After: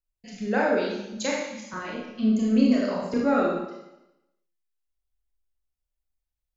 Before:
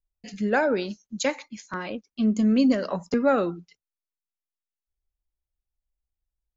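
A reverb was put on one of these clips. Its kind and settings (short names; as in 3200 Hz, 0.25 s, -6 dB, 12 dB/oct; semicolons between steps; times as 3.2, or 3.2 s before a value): Schroeder reverb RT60 0.9 s, combs from 25 ms, DRR -4 dB; gain -5.5 dB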